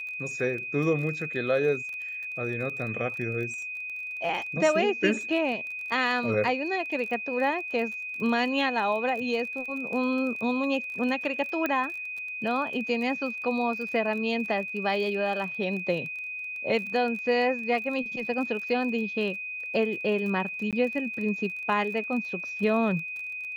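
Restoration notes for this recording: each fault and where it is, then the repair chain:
crackle 29 per s -35 dBFS
whine 2.5 kHz -33 dBFS
11.66 s: pop -14 dBFS
20.71–20.73 s: dropout 17 ms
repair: de-click; band-stop 2.5 kHz, Q 30; interpolate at 20.71 s, 17 ms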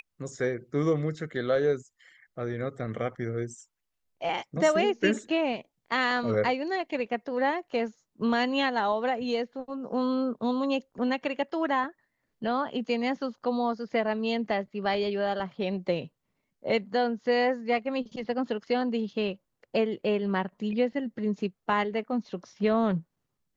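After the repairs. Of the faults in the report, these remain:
nothing left

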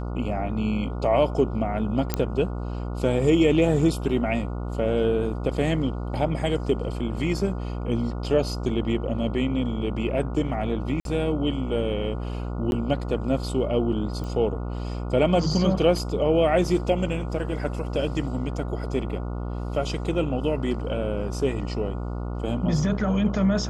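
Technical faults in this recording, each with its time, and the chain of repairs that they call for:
buzz 60 Hz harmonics 24 -30 dBFS
2.14 s: pop -8 dBFS
11.00–11.05 s: dropout 52 ms
12.71–12.72 s: dropout 11 ms
14.24 s: pop -23 dBFS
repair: de-click; de-hum 60 Hz, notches 24; interpolate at 11.00 s, 52 ms; interpolate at 12.71 s, 11 ms

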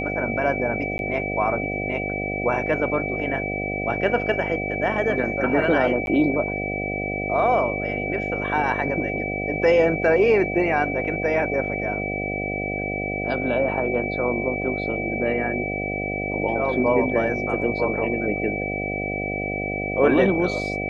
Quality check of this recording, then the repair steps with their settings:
buzz 50 Hz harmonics 15 -29 dBFS
whine 2.3 kHz -28 dBFS
0.98–0.99 s: dropout 11 ms
6.06–6.07 s: dropout 11 ms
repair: band-stop 2.3 kHz, Q 30; de-hum 50 Hz, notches 15; interpolate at 0.98 s, 11 ms; interpolate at 6.06 s, 11 ms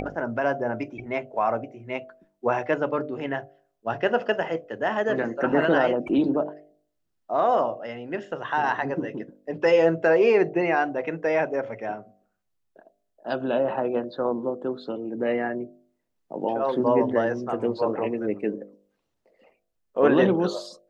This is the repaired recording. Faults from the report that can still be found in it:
nothing left

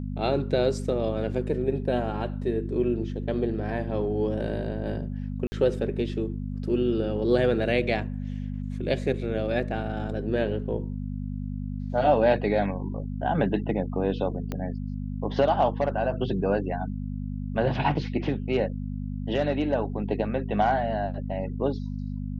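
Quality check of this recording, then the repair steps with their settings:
hum 50 Hz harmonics 5 -32 dBFS
5.47–5.52 s: dropout 50 ms
14.52 s: pop -18 dBFS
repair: de-click; de-hum 50 Hz, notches 5; interpolate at 5.47 s, 50 ms

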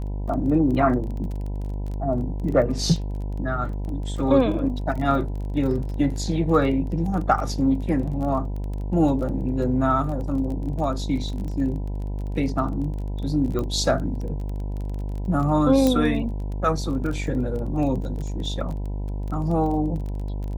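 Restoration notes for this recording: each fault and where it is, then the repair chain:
buzz 50 Hz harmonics 20 -28 dBFS
crackle 24 per s -31 dBFS
13.59 s: pop -16 dBFS
15.87 s: pop -9 dBFS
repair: de-click; de-hum 50 Hz, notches 20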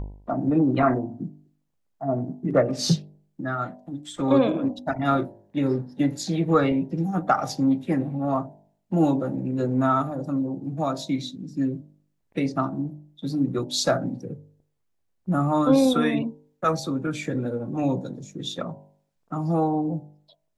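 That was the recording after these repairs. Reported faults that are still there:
nothing left

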